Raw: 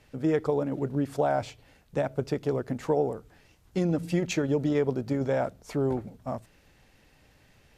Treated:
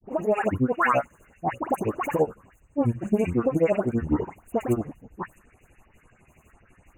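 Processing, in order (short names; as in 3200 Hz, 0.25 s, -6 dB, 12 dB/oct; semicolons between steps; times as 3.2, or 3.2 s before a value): speed glide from 153% -> 70%; grains, grains 12/s, pitch spread up and down by 12 st; dispersion highs, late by 0.1 s, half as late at 1900 Hz; FFT band-reject 2900–6200 Hz; gain +6.5 dB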